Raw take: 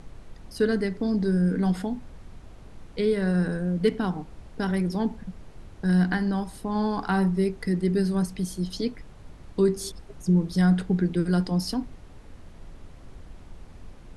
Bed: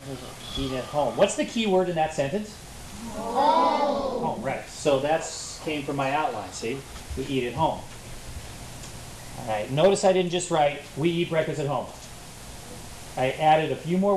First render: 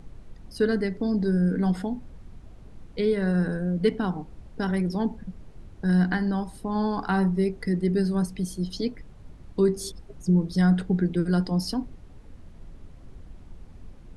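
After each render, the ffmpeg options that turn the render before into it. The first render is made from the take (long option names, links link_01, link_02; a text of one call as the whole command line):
ffmpeg -i in.wav -af "afftdn=noise_reduction=6:noise_floor=-47" out.wav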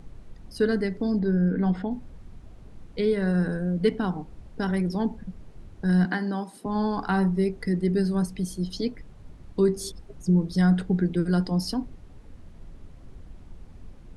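ffmpeg -i in.wav -filter_complex "[0:a]asettb=1/sr,asplit=3[link_01][link_02][link_03];[link_01]atrim=end=1.194[link_04];[link_02]atrim=start=1.19:end=1.91,asetpts=PTS-STARTPTS,afade=type=in:duration=0.004:curve=qsin,afade=type=out:start_time=0.716:duration=0.004:curve=qsin,lowpass=3200[link_05];[link_03]atrim=start=1.906[link_06];[link_04][link_05]acrossfade=duration=0.004:curve1=hsin:curve2=qsin[link_07];[link_07][link_06]acrossfade=duration=0.004:curve1=qsin:curve2=hsin,asettb=1/sr,asplit=3[link_08][link_09][link_10];[link_08]atrim=end=6.054[link_11];[link_09]atrim=start=6.05:end=6.66,asetpts=PTS-STARTPTS,afade=type=in:duration=0.004:curve=qsin,afade=type=out:start_time=0.606:duration=0.004:curve=qsin,highpass=frequency=200:width=0.5412,highpass=frequency=200:width=1.3066[link_12];[link_10]atrim=start=6.656[link_13];[link_11][link_12]acrossfade=duration=0.004:curve1=hsin:curve2=qsin[link_14];[link_14][link_13]acrossfade=duration=0.004:curve1=qsin:curve2=hsin" out.wav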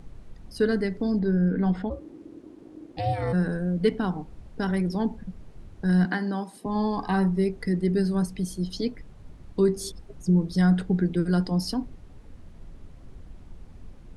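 ffmpeg -i in.wav -filter_complex "[0:a]asplit=3[link_01][link_02][link_03];[link_01]afade=type=out:start_time=1.89:duration=0.02[link_04];[link_02]aeval=exprs='val(0)*sin(2*PI*310*n/s)':channel_layout=same,afade=type=in:start_time=1.89:duration=0.02,afade=type=out:start_time=3.32:duration=0.02[link_05];[link_03]afade=type=in:start_time=3.32:duration=0.02[link_06];[link_04][link_05][link_06]amix=inputs=3:normalize=0,asettb=1/sr,asplit=3[link_07][link_08][link_09];[link_07]atrim=end=6.564[link_10];[link_08]atrim=start=6.56:end=7.14,asetpts=PTS-STARTPTS,afade=type=in:duration=0.004:curve=qsin,afade=type=out:start_time=0.576:duration=0.004:curve=qsin,asuperstop=centerf=1400:order=20:qfactor=5.4[link_11];[link_09]atrim=start=7.136[link_12];[link_10][link_11]acrossfade=duration=0.004:curve1=hsin:curve2=qsin[link_13];[link_13][link_12]acrossfade=duration=0.004:curve1=qsin:curve2=hsin" out.wav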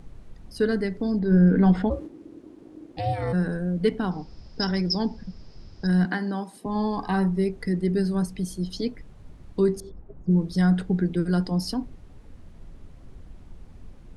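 ffmpeg -i in.wav -filter_complex "[0:a]asplit=3[link_01][link_02][link_03];[link_01]afade=type=out:start_time=1.3:duration=0.02[link_04];[link_02]acontrast=54,afade=type=in:start_time=1.3:duration=0.02,afade=type=out:start_time=2.06:duration=0.02[link_05];[link_03]afade=type=in:start_time=2.06:duration=0.02[link_06];[link_04][link_05][link_06]amix=inputs=3:normalize=0,asettb=1/sr,asplit=3[link_07][link_08][link_09];[link_07]atrim=end=4.114[link_10];[link_08]atrim=start=4.11:end=5.87,asetpts=PTS-STARTPTS,afade=type=in:duration=0.004:curve=qsin,afade=type=out:start_time=1.756:duration=0.004:curve=qsin,lowpass=frequency=5100:width_type=q:width=14[link_11];[link_09]atrim=start=5.866[link_12];[link_10][link_11]acrossfade=duration=0.004:curve1=hsin:curve2=qsin[link_13];[link_13][link_12]acrossfade=duration=0.004:curve1=qsin:curve2=hsin,asettb=1/sr,asplit=3[link_14][link_15][link_16];[link_14]atrim=end=9.804[link_17];[link_15]atrim=start=9.8:end=10.31,asetpts=PTS-STARTPTS,afade=type=in:duration=0.004:curve=qsin,afade=type=out:start_time=0.506:duration=0.004:curve=qsin,lowpass=1100[link_18];[link_16]atrim=start=10.306[link_19];[link_17][link_18]acrossfade=duration=0.004:curve1=hsin:curve2=qsin[link_20];[link_20][link_19]acrossfade=duration=0.004:curve1=qsin:curve2=hsin" out.wav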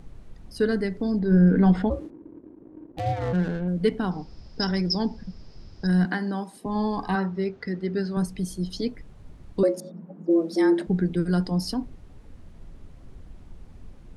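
ffmpeg -i in.wav -filter_complex "[0:a]asettb=1/sr,asplit=3[link_01][link_02][link_03];[link_01]atrim=end=2.104[link_04];[link_02]atrim=start=2.1:end=3.68,asetpts=PTS-STARTPTS,afade=type=in:duration=0.004:curve=qsin,afade=type=out:start_time=1.576:duration=0.004:curve=qsin,adynamicsmooth=sensitivity=6.5:basefreq=540[link_05];[link_03]atrim=start=3.676[link_06];[link_04][link_05]acrossfade=duration=0.004:curve1=hsin:curve2=qsin[link_07];[link_07][link_06]acrossfade=duration=0.004:curve1=qsin:curve2=hsin,asettb=1/sr,asplit=3[link_08][link_09][link_10];[link_08]atrim=end=7.154[link_11];[link_09]atrim=start=7.15:end=8.17,asetpts=PTS-STARTPTS,afade=type=in:duration=0.004:curve=qsin,afade=type=out:start_time=1.016:duration=0.004:curve=qsin,highpass=110,equalizer=frequency=170:width_type=q:width=4:gain=-7,equalizer=frequency=330:width_type=q:width=4:gain=-5,equalizer=frequency=1400:width_type=q:width=4:gain=6,lowpass=frequency=5700:width=0.5412,lowpass=frequency=5700:width=1.3066[link_12];[link_10]atrim=start=8.166[link_13];[link_11][link_12]acrossfade=duration=0.004:curve1=hsin:curve2=qsin[link_14];[link_14][link_13]acrossfade=duration=0.004:curve1=qsin:curve2=hsin,asettb=1/sr,asplit=3[link_15][link_16][link_17];[link_15]atrim=end=9.634[link_18];[link_16]atrim=start=9.63:end=10.87,asetpts=PTS-STARTPTS,afade=type=in:duration=0.004:curve=qsin,afade=type=out:start_time=1.236:duration=0.004:curve=qsin,afreqshift=160[link_19];[link_17]atrim=start=10.866[link_20];[link_18][link_19]acrossfade=duration=0.004:curve1=hsin:curve2=qsin[link_21];[link_21][link_20]acrossfade=duration=0.004:curve1=qsin:curve2=hsin" out.wav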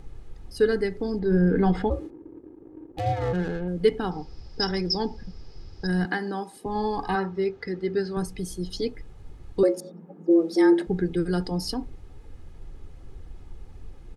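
ffmpeg -i in.wav -af "aecho=1:1:2.4:0.48" out.wav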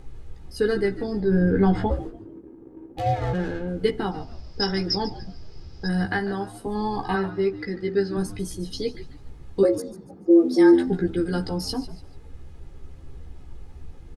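ffmpeg -i in.wav -filter_complex "[0:a]asplit=2[link_01][link_02];[link_02]adelay=15,volume=-4dB[link_03];[link_01][link_03]amix=inputs=2:normalize=0,asplit=4[link_04][link_05][link_06][link_07];[link_05]adelay=145,afreqshift=-85,volume=-15dB[link_08];[link_06]adelay=290,afreqshift=-170,volume=-24.6dB[link_09];[link_07]adelay=435,afreqshift=-255,volume=-34.3dB[link_10];[link_04][link_08][link_09][link_10]amix=inputs=4:normalize=0" out.wav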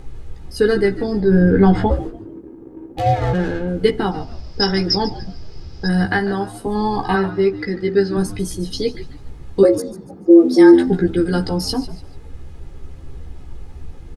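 ffmpeg -i in.wav -af "volume=7dB,alimiter=limit=-1dB:level=0:latency=1" out.wav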